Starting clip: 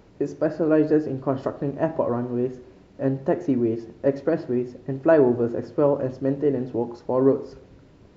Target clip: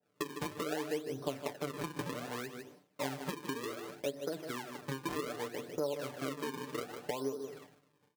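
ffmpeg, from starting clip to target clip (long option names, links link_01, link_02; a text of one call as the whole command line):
ffmpeg -i in.wav -af "acrusher=samples=37:mix=1:aa=0.000001:lfo=1:lforange=59.2:lforate=0.65,highpass=210,equalizer=frequency=300:width=2.1:gain=-5,aecho=1:1:152:0.224,agate=range=-33dB:threshold=-44dB:ratio=3:detection=peak,acompressor=threshold=-31dB:ratio=10,aecho=1:1:6.8:0.65,adynamicequalizer=threshold=0.00282:dfrequency=1900:dqfactor=0.7:tfrequency=1900:tqfactor=0.7:attack=5:release=100:ratio=0.375:range=1.5:mode=cutabove:tftype=highshelf,volume=-3.5dB" out.wav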